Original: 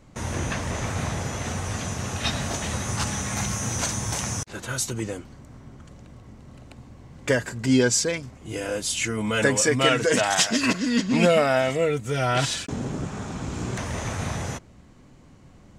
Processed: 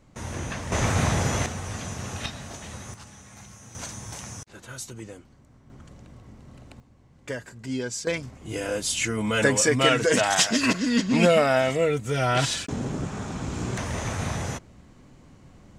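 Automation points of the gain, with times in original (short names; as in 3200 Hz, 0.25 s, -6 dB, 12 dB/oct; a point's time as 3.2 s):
-4.5 dB
from 0.72 s +5 dB
from 1.46 s -4 dB
from 2.26 s -10.5 dB
from 2.94 s -19 dB
from 3.75 s -10 dB
from 5.7 s -1.5 dB
from 6.8 s -11 dB
from 8.07 s 0 dB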